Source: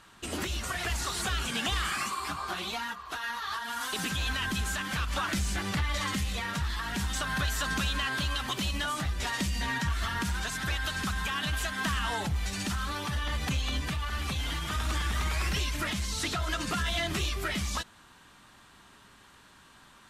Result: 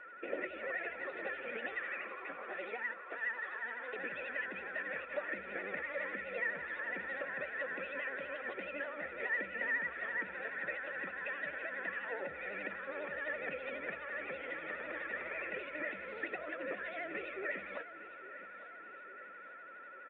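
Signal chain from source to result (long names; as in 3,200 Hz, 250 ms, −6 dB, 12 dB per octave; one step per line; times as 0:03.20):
Chebyshev band-pass filter 340–2,800 Hz, order 2
downward compressor 3 to 1, threshold −40 dBFS, peak gain reduction 8.5 dB
formant resonators in series e
steady tone 1,400 Hz −64 dBFS
pitch vibrato 12 Hz 92 cents
repeating echo 857 ms, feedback 54%, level −14.5 dB
level +14 dB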